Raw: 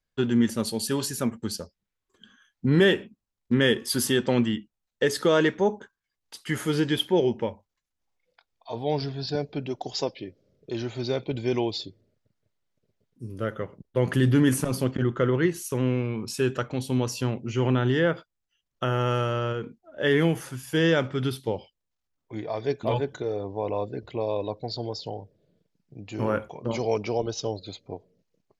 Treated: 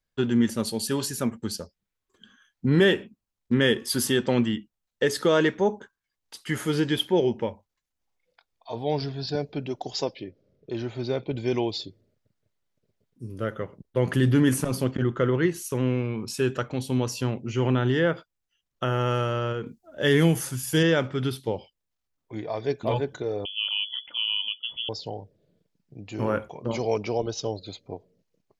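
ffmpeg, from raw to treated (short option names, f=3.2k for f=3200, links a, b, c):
-filter_complex "[0:a]asettb=1/sr,asplit=3[a][b][c];[a]atrim=end=10.234[d];[b]atrim=start=10.23:end=11.38,asetpts=PTS-STARTPTS,afade=t=in:d=0.004:c=qsin,afade=t=out:st=1.146:d=0.004:c=qsin,lowpass=f=3k:p=1[e];[c]atrim=start=11.376[f];[d][e]acrossfade=d=0.004:c1=hsin:c2=qsin[g];[g][f]acrossfade=d=0.004:c1=qsin:c2=hsin,asettb=1/sr,asplit=3[h][i][j];[h]atrim=end=19.664[k];[i]atrim=start=19.66:end=20.83,asetpts=PTS-STARTPTS,afade=t=in:d=0.004:c=qsin,afade=t=out:st=1.166:d=0.004:c=qsin,bass=f=250:g=5,treble=f=4k:g=11[l];[j]atrim=start=20.826[m];[k][l]acrossfade=d=0.004:c1=hsin:c2=qsin[n];[n][m]acrossfade=d=0.004:c1=qsin:c2=hsin,asettb=1/sr,asplit=3[o][p][q];[o]atrim=end=23.454[r];[p]atrim=start=23.45:end=24.89,asetpts=PTS-STARTPTS,afade=t=in:d=0.004:c=qsin,afade=t=out:st=1.436:d=0.004:c=qsin,lowpass=f=3k:t=q:w=0.5098,lowpass=f=3k:t=q:w=0.6013,lowpass=f=3k:t=q:w=0.9,lowpass=f=3k:t=q:w=2.563,afreqshift=-3500[s];[q]atrim=start=24.886[t];[r][s]acrossfade=d=0.004:c1=hsin:c2=qsin[u];[u][t]acrossfade=d=0.004:c1=qsin:c2=hsin"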